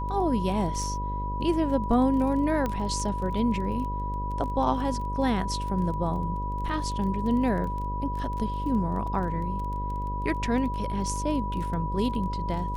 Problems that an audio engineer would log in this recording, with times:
buzz 50 Hz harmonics 12 -32 dBFS
crackle 20/s -34 dBFS
tone 980 Hz -32 dBFS
2.66 pop -16 dBFS

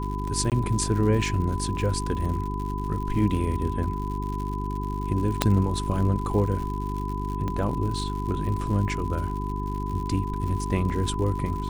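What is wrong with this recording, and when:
crackle 120/s -33 dBFS
hum 50 Hz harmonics 8 -30 dBFS
tone 1000 Hz -33 dBFS
0.5–0.52 gap 18 ms
5.42 pop -4 dBFS
7.48 pop -18 dBFS

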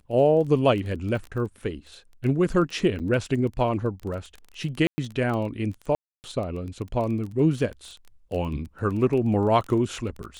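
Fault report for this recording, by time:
crackle 18/s -31 dBFS
2.99–3 gap 8.3 ms
4.87–4.98 gap 0.11 s
5.95–6.24 gap 0.289 s

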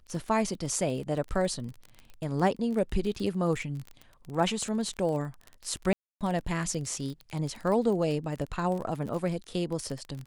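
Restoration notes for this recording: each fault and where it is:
crackle 27/s -33 dBFS
5.93–6.21 gap 0.277 s

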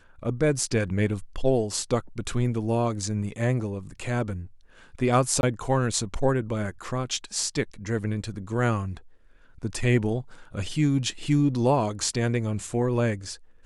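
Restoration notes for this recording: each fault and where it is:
5.41–5.43 gap 21 ms

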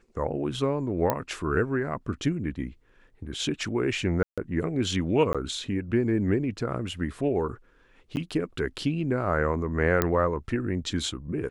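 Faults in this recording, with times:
1.1 pop -10 dBFS
4.23–4.38 gap 0.146 s
5.33–5.35 gap 16 ms
8.16–8.17 gap 9.7 ms
10.02 pop -8 dBFS

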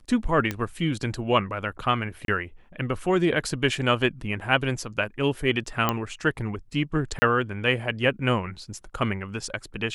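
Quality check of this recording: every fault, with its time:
0.51 pop -13 dBFS
2.25–2.28 gap 32 ms
5.89 pop -8 dBFS
7.19–7.22 gap 30 ms

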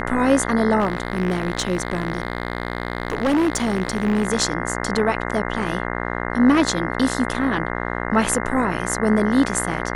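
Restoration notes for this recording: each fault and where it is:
buzz 60 Hz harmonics 35 -26 dBFS
0.79–4.27 clipped -15 dBFS

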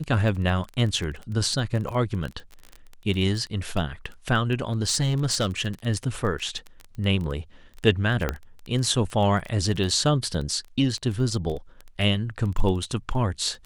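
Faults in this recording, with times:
crackle 16/s -29 dBFS
4.72–5.68 clipped -18.5 dBFS
8.29 pop -11 dBFS

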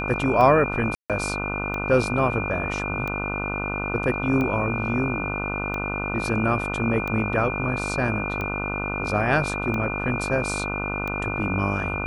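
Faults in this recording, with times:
buzz 50 Hz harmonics 30 -30 dBFS
tick 45 rpm -17 dBFS
tone 2400 Hz -29 dBFS
0.95–1.1 gap 0.147 s

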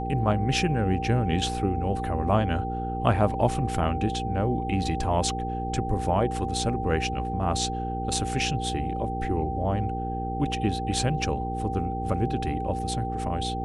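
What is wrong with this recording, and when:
hum 60 Hz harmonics 8 -32 dBFS
tone 780 Hz -31 dBFS

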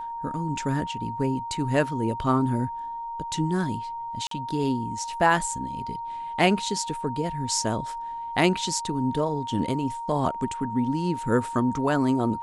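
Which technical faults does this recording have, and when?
tone 930 Hz -31 dBFS
4.27–4.31 gap 43 ms

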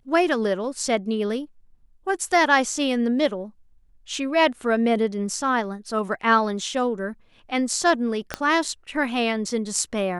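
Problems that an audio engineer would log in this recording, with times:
8.34 pop -10 dBFS

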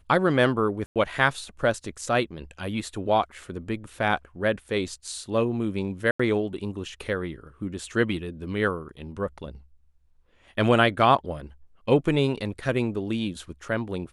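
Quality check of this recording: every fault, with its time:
0.86–0.96 gap 97 ms
6.11–6.2 gap 85 ms

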